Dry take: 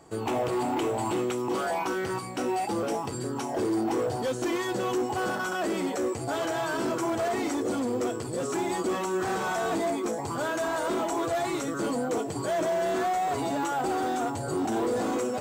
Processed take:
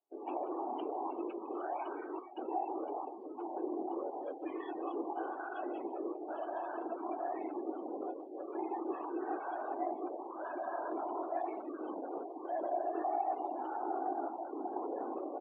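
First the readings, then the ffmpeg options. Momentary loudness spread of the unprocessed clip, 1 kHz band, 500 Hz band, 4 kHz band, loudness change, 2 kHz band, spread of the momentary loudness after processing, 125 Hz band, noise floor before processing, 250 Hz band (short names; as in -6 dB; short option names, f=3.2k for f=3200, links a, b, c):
3 LU, -7.5 dB, -11.0 dB, under -25 dB, -10.5 dB, -17.5 dB, 6 LU, under -35 dB, -34 dBFS, -11.5 dB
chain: -af "aecho=1:1:158:0.316,afftfilt=real='hypot(re,im)*cos(2*PI*random(0))':imag='hypot(re,im)*sin(2*PI*random(1))':win_size=512:overlap=0.75,highpass=f=330:w=0.5412,highpass=f=330:w=1.3066,equalizer=f=330:t=q:w=4:g=7,equalizer=f=490:t=q:w=4:g=-5,equalizer=f=760:t=q:w=4:g=6,equalizer=f=1.4k:t=q:w=4:g=-4,equalizer=f=2k:t=q:w=4:g=-5,lowpass=f=3.1k:w=0.5412,lowpass=f=3.1k:w=1.3066,afftdn=nr=29:nf=-41,volume=-5.5dB"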